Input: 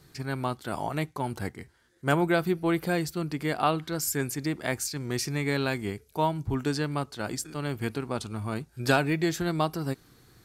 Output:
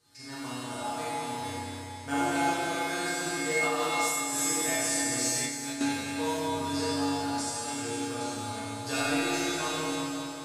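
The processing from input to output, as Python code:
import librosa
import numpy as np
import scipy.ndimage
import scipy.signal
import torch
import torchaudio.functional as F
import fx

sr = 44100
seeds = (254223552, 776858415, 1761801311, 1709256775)

y = fx.quant_float(x, sr, bits=2)
y = fx.high_shelf(y, sr, hz=5600.0, db=11.0)
y = fx.hum_notches(y, sr, base_hz=60, count=6)
y = fx.comb_fb(y, sr, f0_hz=94.0, decay_s=0.41, harmonics='odd', damping=0.0, mix_pct=90)
y = fx.rev_schroeder(y, sr, rt60_s=3.1, comb_ms=25, drr_db=-9.0)
y = fx.over_compress(y, sr, threshold_db=-30.0, ratio=-1.0, at=(3.26, 5.81))
y = scipy.signal.sosfilt(scipy.signal.butter(4, 9800.0, 'lowpass', fs=sr, output='sos'), y)
y = fx.low_shelf(y, sr, hz=180.0, db=-8.5)
y = fx.comb_fb(y, sr, f0_hz=120.0, decay_s=0.16, harmonics='all', damping=0.0, mix_pct=90)
y = fx.echo_split(y, sr, split_hz=1600.0, low_ms=182, high_ms=271, feedback_pct=52, wet_db=-9)
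y = F.gain(torch.from_numpy(y), 8.5).numpy()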